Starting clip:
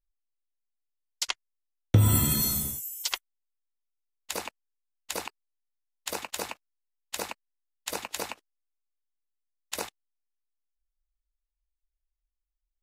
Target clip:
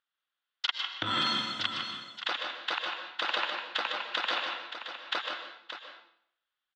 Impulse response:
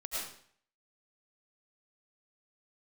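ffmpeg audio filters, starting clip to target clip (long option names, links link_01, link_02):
-filter_complex "[0:a]equalizer=frequency=2000:width_type=o:width=2.7:gain=7.5,alimiter=limit=-16.5dB:level=0:latency=1:release=139,atempo=1.9,asoftclip=type=tanh:threshold=-23dB,highpass=420,equalizer=frequency=430:width_type=q:width=4:gain=-8,equalizer=frequency=640:width_type=q:width=4:gain=-6,equalizer=frequency=930:width_type=q:width=4:gain=-3,equalizer=frequency=1400:width_type=q:width=4:gain=5,equalizer=frequency=2300:width_type=q:width=4:gain=-7,equalizer=frequency=3400:width_type=q:width=4:gain=6,lowpass=frequency=3800:width=0.5412,lowpass=frequency=3800:width=1.3066,aecho=1:1:153|575:0.422|0.335,asplit=2[link_01][link_02];[1:a]atrim=start_sample=2205,asetrate=37485,aresample=44100,highshelf=frequency=6600:gain=-10[link_03];[link_02][link_03]afir=irnorm=-1:irlink=0,volume=-4.5dB[link_04];[link_01][link_04]amix=inputs=2:normalize=0,volume=5dB"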